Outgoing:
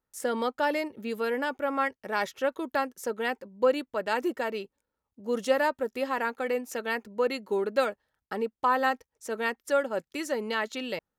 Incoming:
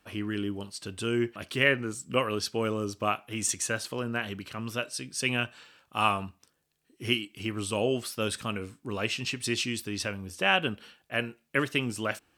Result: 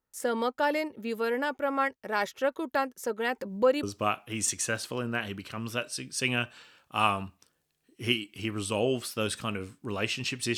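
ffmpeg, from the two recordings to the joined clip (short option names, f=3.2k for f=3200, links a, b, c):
-filter_complex "[0:a]asplit=3[a][b][c];[a]afade=t=out:st=3.29:d=0.02[d];[b]acompressor=mode=upward:threshold=-25dB:ratio=2.5:attack=3.2:release=140:knee=2.83:detection=peak,afade=t=in:st=3.29:d=0.02,afade=t=out:st=3.83:d=0.02[e];[c]afade=t=in:st=3.83:d=0.02[f];[d][e][f]amix=inputs=3:normalize=0,apad=whole_dur=10.57,atrim=end=10.57,atrim=end=3.832[g];[1:a]atrim=start=2.838:end=9.58[h];[g][h]acrossfade=d=0.004:c1=hsin:c2=hsin"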